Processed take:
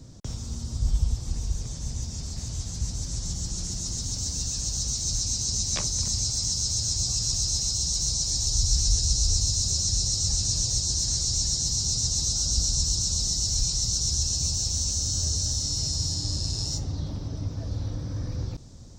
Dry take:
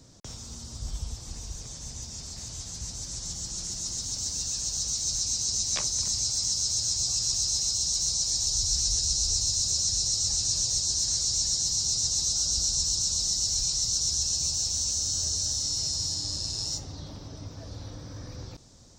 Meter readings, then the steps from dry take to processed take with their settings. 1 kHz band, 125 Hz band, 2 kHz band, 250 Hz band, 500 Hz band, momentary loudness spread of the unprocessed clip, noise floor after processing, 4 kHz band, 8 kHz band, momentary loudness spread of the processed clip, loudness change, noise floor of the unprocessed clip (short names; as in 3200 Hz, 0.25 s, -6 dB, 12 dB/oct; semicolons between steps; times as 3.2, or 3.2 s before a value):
+1.5 dB, +10.5 dB, n/a, +7.5 dB, +3.5 dB, 17 LU, -36 dBFS, 0.0 dB, 0.0 dB, 10 LU, 0.0 dB, -43 dBFS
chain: low shelf 310 Hz +11.5 dB